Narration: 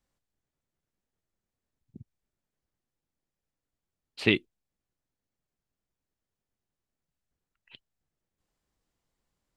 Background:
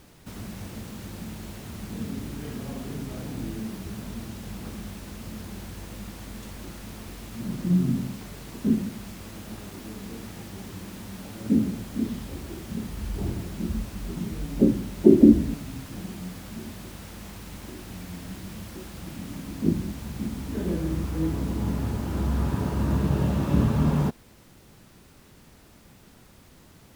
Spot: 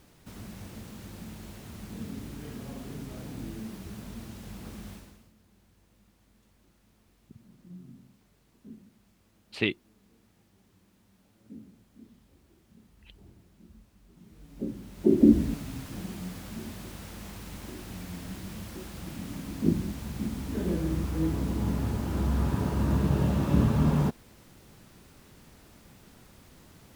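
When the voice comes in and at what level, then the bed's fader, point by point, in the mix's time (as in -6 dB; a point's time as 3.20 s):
5.35 s, -4.0 dB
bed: 4.94 s -5.5 dB
5.34 s -25 dB
14.09 s -25 dB
15.41 s -1.5 dB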